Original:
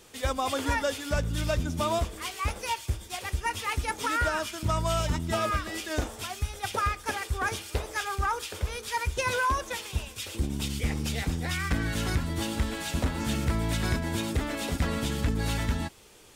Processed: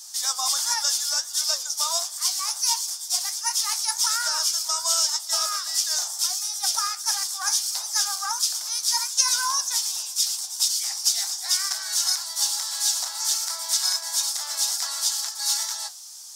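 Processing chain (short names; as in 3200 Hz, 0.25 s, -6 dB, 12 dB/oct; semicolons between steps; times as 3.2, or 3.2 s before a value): steep high-pass 740 Hz 48 dB/oct; resonant high shelf 3700 Hz +13.5 dB, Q 3; flange 1.4 Hz, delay 7.3 ms, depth 8.9 ms, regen +70%; gain +4 dB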